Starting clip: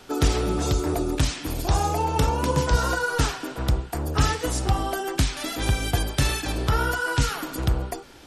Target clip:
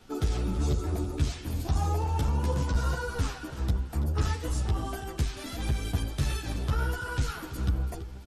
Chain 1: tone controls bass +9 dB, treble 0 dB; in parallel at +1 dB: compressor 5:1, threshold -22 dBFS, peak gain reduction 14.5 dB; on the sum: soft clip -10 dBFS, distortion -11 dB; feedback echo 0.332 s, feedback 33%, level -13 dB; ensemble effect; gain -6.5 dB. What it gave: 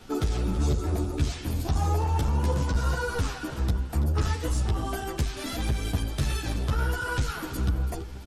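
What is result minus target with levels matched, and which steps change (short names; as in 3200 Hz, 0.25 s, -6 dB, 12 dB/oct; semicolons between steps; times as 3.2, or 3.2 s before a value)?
compressor: peak gain reduction +14.5 dB
remove: compressor 5:1, threshold -22 dBFS, peak gain reduction 14.5 dB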